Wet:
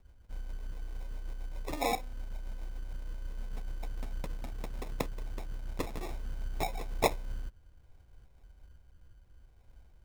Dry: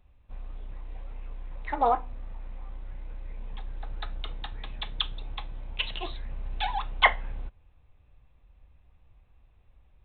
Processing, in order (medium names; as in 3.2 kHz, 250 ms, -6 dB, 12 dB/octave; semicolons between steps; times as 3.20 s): in parallel at +2.5 dB: compression, threshold -39 dBFS, peak gain reduction 23 dB; on the sum: rotary cabinet horn 7.5 Hz, later 0.6 Hz, at 6.14 s; sample-and-hold 29×; trim -4.5 dB